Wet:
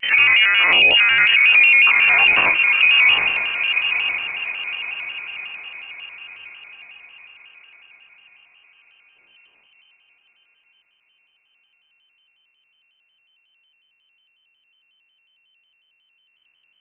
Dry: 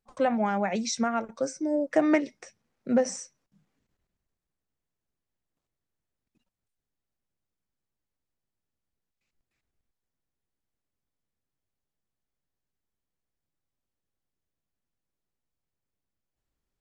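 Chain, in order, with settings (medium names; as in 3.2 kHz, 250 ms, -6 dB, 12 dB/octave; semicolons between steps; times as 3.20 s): every event in the spectrogram widened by 120 ms; gate -59 dBFS, range -13 dB; compressor with a negative ratio -28 dBFS, ratio -1; distance through air 280 m; echo that smears into a reverb 938 ms, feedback 46%, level -12 dB; frequency inversion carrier 2.9 kHz; loudness maximiser +26 dB; vibrato with a chosen wave square 5.5 Hz, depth 100 cents; trim -4.5 dB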